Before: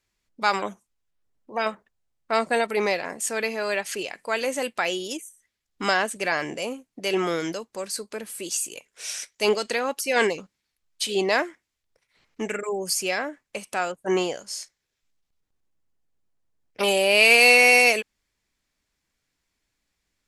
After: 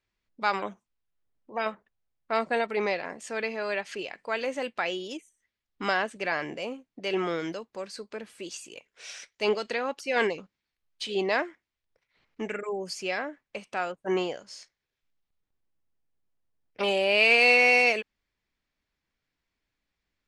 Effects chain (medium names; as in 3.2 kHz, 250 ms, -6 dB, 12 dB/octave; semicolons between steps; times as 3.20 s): low-pass 4.1 kHz 12 dB/octave; trim -4 dB